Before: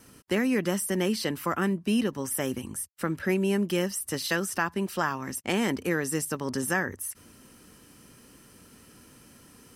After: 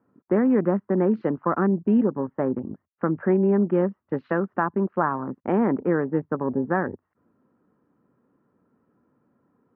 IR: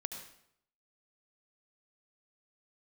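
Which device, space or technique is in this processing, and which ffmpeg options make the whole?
over-cleaned archive recording: -af "highpass=140,lowpass=7500,afwtdn=0.0112,lowpass=f=1300:w=0.5412,lowpass=f=1300:w=1.3066,volume=2.11"

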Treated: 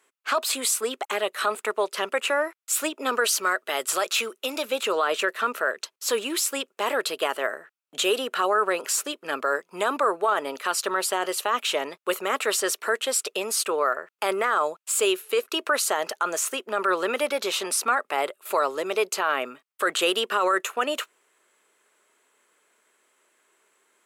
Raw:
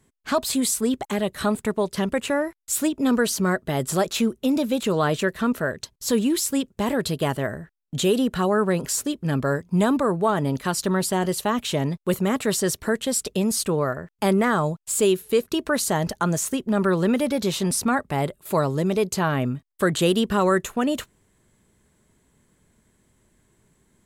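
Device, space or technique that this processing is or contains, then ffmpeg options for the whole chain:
laptop speaker: -filter_complex "[0:a]asettb=1/sr,asplit=3[s0][s1][s2];[s0]atrim=end=3.244[s3];[s1]atrim=start=3.24:end=4.65,asetpts=PTS-STARTPTS,afade=t=in:d=0.004:c=qsin,afade=t=out:st=1.406:d=0.004:c=qsin,tiltshelf=f=1400:g=-3.5[s4];[s2]atrim=start=4.646[s5];[s3][s4]acrossfade=d=0.004:c1=hsin:c2=qsin[s6];[s6][s5]acrossfade=d=0.004:c1=qsin:c2=hsin,highpass=f=410:w=0.5412,highpass=f=410:w=1.3066,equalizer=f=1300:t=o:w=0.48:g=8.5,equalizer=f=2600:t=o:w=0.56:g=7,alimiter=limit=0.224:level=0:latency=1:release=19"

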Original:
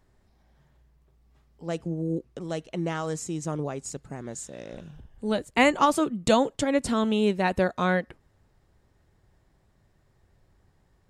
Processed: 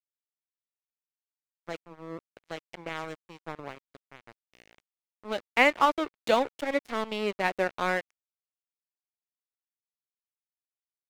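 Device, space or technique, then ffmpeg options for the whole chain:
pocket radio on a weak battery: -af "highpass=360,lowpass=4100,aeval=exprs='sgn(val(0))*max(abs(val(0))-0.0211,0)':c=same,equalizer=f=2200:t=o:w=0.31:g=5"

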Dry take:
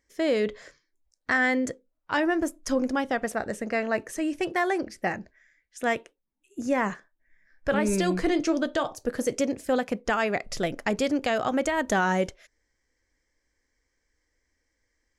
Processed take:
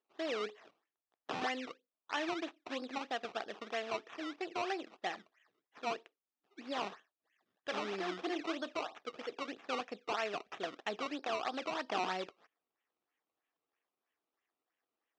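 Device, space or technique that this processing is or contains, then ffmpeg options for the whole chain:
circuit-bent sampling toy: -filter_complex "[0:a]asettb=1/sr,asplit=3[s0][s1][s2];[s0]atrim=end=9.054[s3];[s1]atrim=start=9.05:end=9.48,asetpts=PTS-STARTPTS,afade=t=in:d=0.004:c=qsin,afade=t=out:st=0.426:d=0.004:c=qsin,lowshelf=f=250:g=-9[s4];[s2]atrim=start=9.476[s5];[s3][s4]acrossfade=d=0.004:c1=hsin:c2=qsin[s6];[s6][s5]acrossfade=d=0.004:c1=qsin:c2=hsin,acrusher=samples=18:mix=1:aa=0.000001:lfo=1:lforange=18:lforate=3.1,highpass=550,equalizer=f=550:t=q:w=4:g=-9,equalizer=f=950:t=q:w=4:g=-6,equalizer=f=1500:t=q:w=4:g=-6,equalizer=f=2100:t=q:w=4:g=-6,equalizer=f=3000:t=q:w=4:g=-3,equalizer=f=4300:t=q:w=4:g=-7,lowpass=f=4500:w=0.5412,lowpass=f=4500:w=1.3066,volume=0.596"

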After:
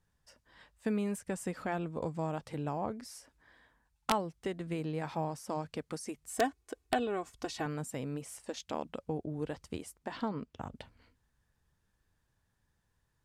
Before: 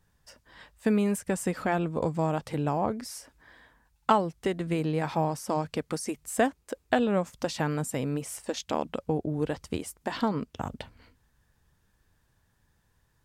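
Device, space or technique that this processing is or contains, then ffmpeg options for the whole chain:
overflowing digital effects unit: -filter_complex "[0:a]asettb=1/sr,asplit=3[s0][s1][s2];[s0]atrim=end=6.294[s3];[s1]atrim=start=6.29:end=7.66,asetpts=PTS-STARTPTS,afade=t=in:d=0.004:c=qsin,afade=t=out:st=1.366:d=0.004:c=qsin,aecho=1:1:2.7:0.73,atrim=end_sample=60417[s4];[s2]atrim=start=7.656[s5];[s3][s4]acrossfade=d=0.004:c1=hsin:c2=qsin[s6];[s6][s5]acrossfade=d=0.004:c1=qsin:c2=hsin,asettb=1/sr,asplit=3[s7][s8][s9];[s7]atrim=end=9.984[s10];[s8]atrim=start=9.98:end=10.75,asetpts=PTS-STARTPTS,afade=t=in:d=0.004:c=qsin,afade=t=out:st=0.766:d=0.004:c=qsin,highshelf=f=6100:g=-8[s11];[s9]atrim=start=10.746[s12];[s10][s11]acrossfade=d=0.004:c1=hsin:c2=qsin[s13];[s13][s12]acrossfade=d=0.004:c1=qsin:c2=hsin,aeval=exprs='(mod(3.35*val(0)+1,2)-1)/3.35':c=same,lowpass=13000,volume=0.398"

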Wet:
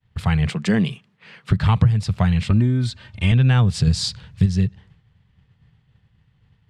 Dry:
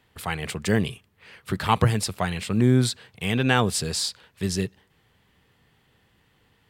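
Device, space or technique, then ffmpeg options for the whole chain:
jukebox: -filter_complex "[0:a]agate=range=0.0224:threshold=0.00178:ratio=3:detection=peak,asettb=1/sr,asplit=3[s0][s1][s2];[s0]atrim=end=0.494[s3];[s1]atrim=start=0.49:end=1.51,asetpts=PTS-STARTPTS,afade=t=in:d=0.004:c=qsin,afade=t=out:st=1.016:d=0.004:c=qsin,highpass=f=190:w=0.5412,highpass=f=190:w=1.3066[s4];[s2]atrim=start=1.506[s5];[s3][s4]acrossfade=d=0.004:c1=hsin:c2=qsin[s6];[s6][s5]acrossfade=d=0.004:c1=qsin:c2=hsin,asettb=1/sr,asplit=3[s7][s8][s9];[s7]atrim=end=3.874[s10];[s8]atrim=start=3.87:end=4.46,asetpts=PTS-STARTPTS,afade=t=in:d=0.004:c=qsin,afade=t=out:st=0.586:d=0.004:c=qsin,bass=f=250:g=7,treble=f=4000:g=6[s11];[s9]atrim=start=4.456[s12];[s10][s11]acrossfade=d=0.004:c1=hsin:c2=qsin[s13];[s13][s12]acrossfade=d=0.004:c1=qsin:c2=hsin,lowpass=5500,lowshelf=f=210:t=q:w=1.5:g=13,acompressor=threshold=0.141:ratio=5,asettb=1/sr,asplit=3[s14][s15][s16];[s14]atrim=end=2.504[s17];[s15]atrim=start=2.5:end=3.32,asetpts=PTS-STARTPTS,afade=t=in:d=0.004:c=qsin,afade=t=out:st=0.816:d=0.004:c=qsin,aecho=1:1:3.3:0.94,atrim=end_sample=36162[s18];[s16]atrim=start=3.316[s19];[s17][s18]acrossfade=d=0.004:c1=hsin:c2=qsin[s20];[s20][s19]acrossfade=d=0.004:c1=qsin:c2=hsin,volume=1.5"

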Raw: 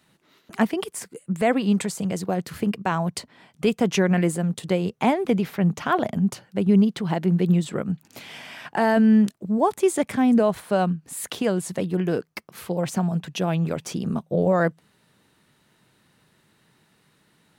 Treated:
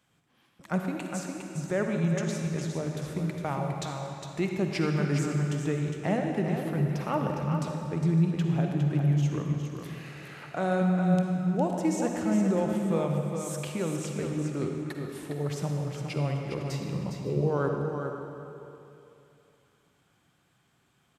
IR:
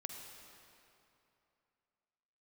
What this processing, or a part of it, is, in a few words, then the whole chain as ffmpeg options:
slowed and reverbed: -filter_complex "[0:a]aecho=1:1:339|463:0.447|0.126,asetrate=36603,aresample=44100[s0];[1:a]atrim=start_sample=2205[s1];[s0][s1]afir=irnorm=-1:irlink=0,volume=0.596"

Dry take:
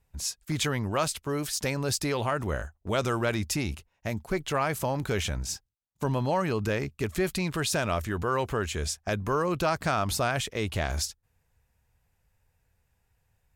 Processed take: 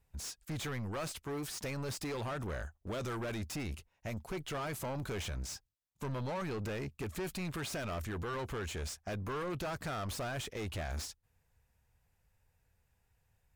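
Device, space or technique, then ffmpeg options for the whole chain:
saturation between pre-emphasis and de-emphasis: -af "highshelf=f=3500:g=7.5,asoftclip=type=tanh:threshold=0.0266,highshelf=f=3500:g=-7.5,volume=0.708"

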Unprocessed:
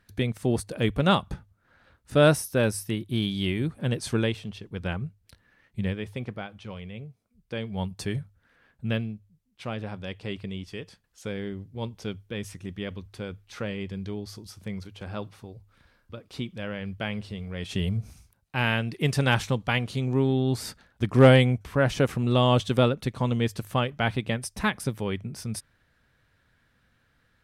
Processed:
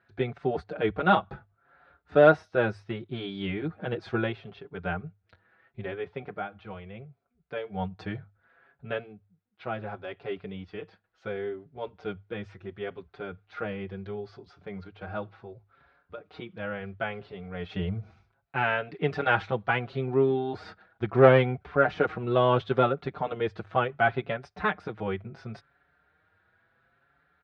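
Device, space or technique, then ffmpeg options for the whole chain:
barber-pole flanger into a guitar amplifier: -filter_complex "[0:a]asplit=2[s0][s1];[s1]adelay=5.6,afreqshift=0.71[s2];[s0][s2]amix=inputs=2:normalize=1,asoftclip=type=tanh:threshold=0.316,highpass=85,equalizer=f=120:t=q:w=4:g=-5,equalizer=f=240:t=q:w=4:g=-7,equalizer=f=400:t=q:w=4:g=6,equalizer=f=730:t=q:w=4:g=10,equalizer=f=1400:t=q:w=4:g=9,equalizer=f=3000:t=q:w=4:g=-5,lowpass=f=3500:w=0.5412,lowpass=f=3500:w=1.3066"

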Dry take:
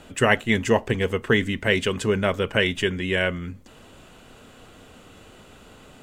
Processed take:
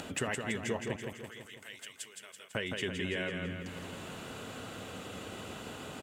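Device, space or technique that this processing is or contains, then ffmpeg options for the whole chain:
upward and downward compression: -filter_complex "[0:a]highpass=88,acompressor=mode=upward:threshold=0.0112:ratio=2.5,acompressor=threshold=0.02:ratio=5,asettb=1/sr,asplit=3[s0][s1][s2];[s0]atrim=end=0.964[s3];[s1]atrim=start=0.96:end=2.55,asetpts=PTS-STARTPTS,afade=t=in:d=0.004:c=qsin,afade=t=out:st=1.586:d=0.004:c=qsin,aderivative[s4];[s2]atrim=start=2.546[s5];[s3][s4]acrossfade=d=0.004:c1=hsin:c2=qsin[s6];[s6][s5]acrossfade=d=0.004:c1=qsin:c2=hsin,aecho=1:1:166|332|498|664|830|996|1162|1328:0.562|0.321|0.183|0.104|0.0594|0.0338|0.0193|0.011"

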